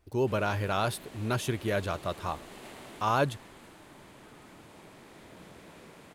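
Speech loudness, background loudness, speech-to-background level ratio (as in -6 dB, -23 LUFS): -31.0 LUFS, -49.0 LUFS, 18.0 dB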